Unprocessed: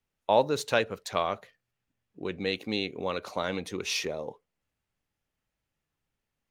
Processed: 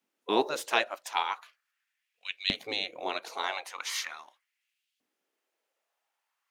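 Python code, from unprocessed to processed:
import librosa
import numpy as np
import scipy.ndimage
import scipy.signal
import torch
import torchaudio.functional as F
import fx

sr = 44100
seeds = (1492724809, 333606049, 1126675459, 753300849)

y = fx.spec_gate(x, sr, threshold_db=-10, keep='weak')
y = fx.filter_lfo_highpass(y, sr, shape='saw_up', hz=0.4, low_hz=240.0, high_hz=3400.0, q=2.3)
y = y * 10.0 ** (3.0 / 20.0)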